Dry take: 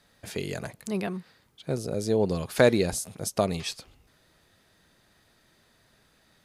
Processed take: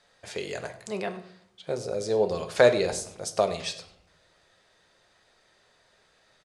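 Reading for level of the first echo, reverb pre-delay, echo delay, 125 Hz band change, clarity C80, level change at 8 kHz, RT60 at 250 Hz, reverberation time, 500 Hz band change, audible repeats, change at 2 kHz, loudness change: -18.5 dB, 5 ms, 98 ms, -7.5 dB, 15.0 dB, -1.5 dB, 0.95 s, 0.70 s, +2.0 dB, 1, +1.0 dB, +0.5 dB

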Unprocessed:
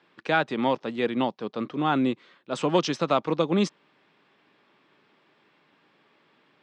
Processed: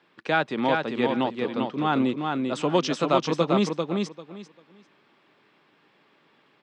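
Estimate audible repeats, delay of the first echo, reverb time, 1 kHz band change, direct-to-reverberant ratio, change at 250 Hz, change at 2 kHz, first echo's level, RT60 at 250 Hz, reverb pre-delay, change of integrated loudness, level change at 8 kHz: 3, 394 ms, no reverb, +1.5 dB, no reverb, +1.5 dB, +1.5 dB, -4.0 dB, no reverb, no reverb, +1.0 dB, +1.5 dB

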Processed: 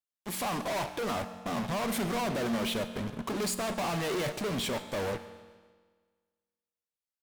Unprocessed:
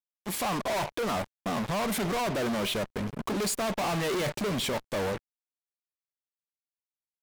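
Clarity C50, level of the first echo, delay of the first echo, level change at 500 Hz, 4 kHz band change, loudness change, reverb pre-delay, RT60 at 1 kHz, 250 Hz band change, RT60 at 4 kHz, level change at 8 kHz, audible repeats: 11.0 dB, -21.5 dB, 140 ms, -2.5 dB, -2.5 dB, -2.5 dB, 5 ms, 1.6 s, -1.5 dB, 1.4 s, -2.5 dB, 3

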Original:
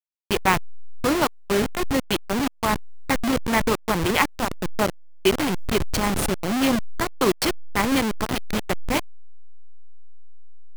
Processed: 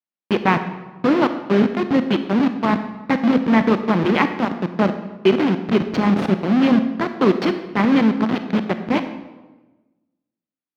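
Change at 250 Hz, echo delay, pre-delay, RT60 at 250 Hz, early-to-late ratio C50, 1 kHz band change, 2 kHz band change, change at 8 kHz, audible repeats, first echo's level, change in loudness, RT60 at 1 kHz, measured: +8.0 dB, no echo, 28 ms, 1.4 s, 10.0 dB, +2.0 dB, +0.5 dB, under -15 dB, no echo, no echo, +4.5 dB, 1.1 s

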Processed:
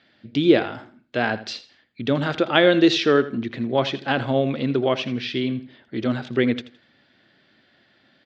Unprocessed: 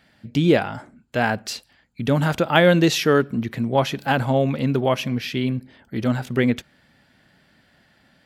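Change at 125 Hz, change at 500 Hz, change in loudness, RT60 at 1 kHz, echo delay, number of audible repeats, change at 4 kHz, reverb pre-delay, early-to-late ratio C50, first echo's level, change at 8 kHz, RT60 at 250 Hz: -6.5 dB, 0.0 dB, -0.5 dB, no reverb, 82 ms, 2, +1.5 dB, no reverb, no reverb, -15.0 dB, no reading, no reverb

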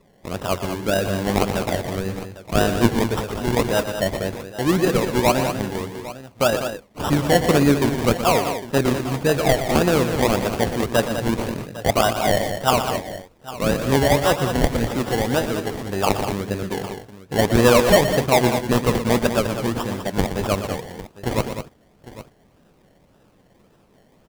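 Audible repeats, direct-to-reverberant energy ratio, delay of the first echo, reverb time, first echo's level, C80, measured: 3, no reverb, 120 ms, no reverb, -10.0 dB, no reverb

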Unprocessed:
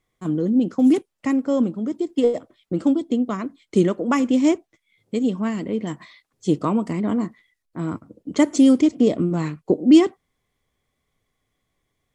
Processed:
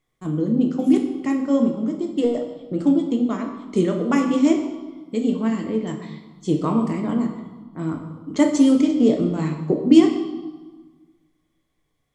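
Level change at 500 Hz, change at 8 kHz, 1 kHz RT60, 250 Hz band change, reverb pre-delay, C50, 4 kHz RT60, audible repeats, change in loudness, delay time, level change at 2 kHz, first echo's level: -0.5 dB, no reading, 1.4 s, +0.5 dB, 6 ms, 6.5 dB, 1.1 s, no echo, 0.0 dB, no echo, -1.0 dB, no echo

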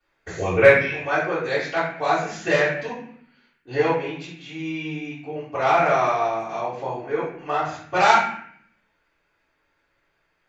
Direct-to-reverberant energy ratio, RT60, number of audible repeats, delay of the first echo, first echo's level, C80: -15.0 dB, 0.60 s, no echo, no echo, no echo, 6.0 dB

